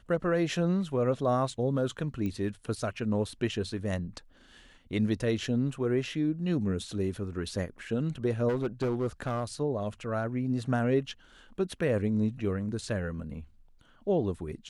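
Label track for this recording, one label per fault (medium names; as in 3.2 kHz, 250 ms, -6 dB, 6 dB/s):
2.260000	2.260000	pop -23 dBFS
8.480000	9.440000	clipped -25 dBFS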